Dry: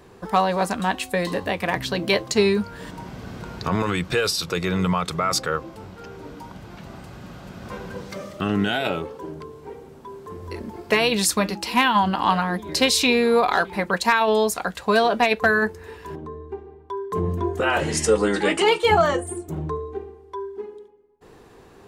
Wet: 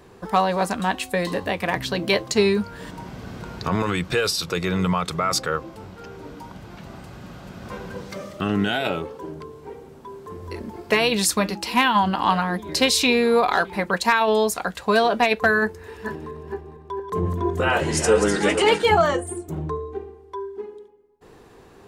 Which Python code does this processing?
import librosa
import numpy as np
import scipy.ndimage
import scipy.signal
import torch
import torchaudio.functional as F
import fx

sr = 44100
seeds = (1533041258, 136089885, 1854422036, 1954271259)

y = fx.reverse_delay_fb(x, sr, ms=228, feedback_pct=50, wet_db=-7.0, at=(15.63, 18.89))